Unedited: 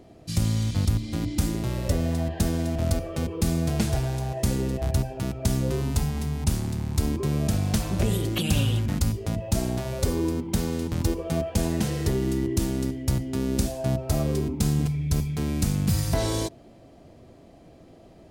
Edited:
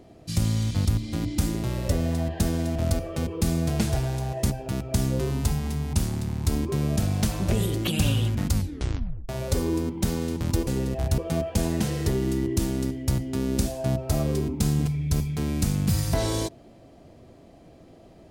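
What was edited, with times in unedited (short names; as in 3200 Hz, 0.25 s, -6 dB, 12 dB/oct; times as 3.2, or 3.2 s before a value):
4.5–5.01 move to 11.18
9.03 tape stop 0.77 s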